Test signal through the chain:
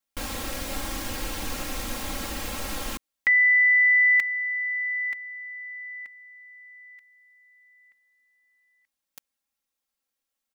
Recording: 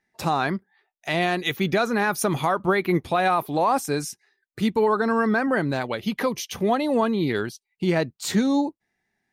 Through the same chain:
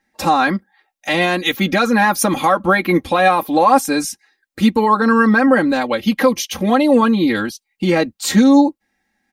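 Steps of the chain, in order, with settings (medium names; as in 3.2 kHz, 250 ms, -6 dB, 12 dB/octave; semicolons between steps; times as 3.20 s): comb 3.7 ms, depth 99%; trim +5.5 dB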